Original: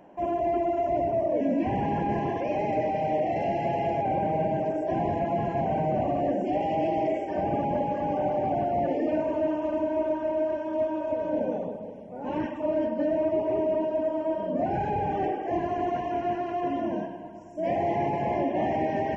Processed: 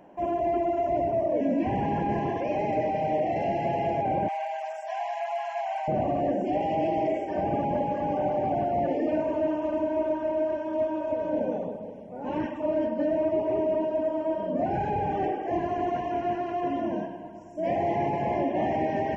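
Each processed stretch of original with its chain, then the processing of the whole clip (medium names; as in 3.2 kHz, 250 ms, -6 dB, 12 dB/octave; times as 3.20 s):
4.28–5.88 s: steep high-pass 650 Hz 96 dB/octave + tilt EQ +3 dB/octave
whole clip: none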